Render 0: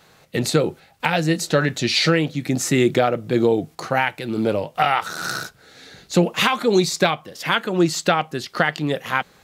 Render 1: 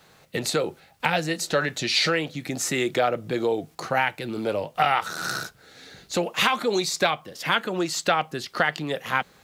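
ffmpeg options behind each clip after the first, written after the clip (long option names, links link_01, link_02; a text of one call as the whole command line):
ffmpeg -i in.wav -filter_complex "[0:a]acrossover=split=430[link_01][link_02];[link_01]acompressor=threshold=-28dB:ratio=6[link_03];[link_03][link_02]amix=inputs=2:normalize=0,acrusher=bits=10:mix=0:aa=0.000001,volume=-2.5dB" out.wav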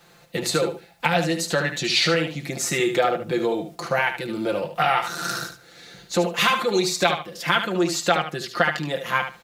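ffmpeg -i in.wav -af "bandreject=frequency=60:width_type=h:width=6,bandreject=frequency=120:width_type=h:width=6,aecho=1:1:5.8:0.65,aecho=1:1:74|148|222:0.376|0.0677|0.0122" out.wav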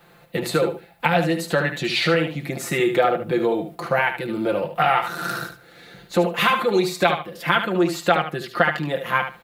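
ffmpeg -i in.wav -af "equalizer=frequency=6100:width_type=o:width=1.2:gain=-12.5,volume=2.5dB" out.wav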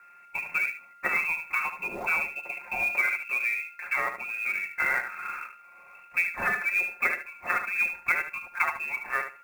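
ffmpeg -i in.wav -af "aeval=exprs='val(0)+0.00708*sin(2*PI*1400*n/s)':channel_layout=same,lowpass=frequency=2400:width_type=q:width=0.5098,lowpass=frequency=2400:width_type=q:width=0.6013,lowpass=frequency=2400:width_type=q:width=0.9,lowpass=frequency=2400:width_type=q:width=2.563,afreqshift=-2800,acrusher=bits=5:mode=log:mix=0:aa=0.000001,volume=-8dB" out.wav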